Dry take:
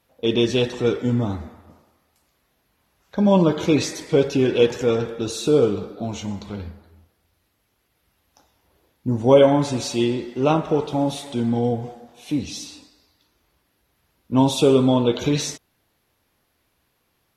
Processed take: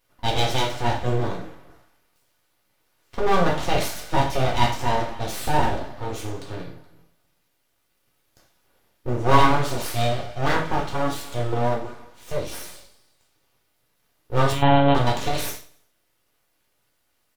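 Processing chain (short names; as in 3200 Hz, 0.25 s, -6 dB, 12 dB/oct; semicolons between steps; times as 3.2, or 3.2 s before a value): full-wave rectifier; on a send: feedback echo 88 ms, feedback 47%, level -20 dB; 14.52–14.95 on the sum: monotone LPC vocoder at 8 kHz 140 Hz; non-linear reverb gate 0.13 s falling, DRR -0.5 dB; gain -2 dB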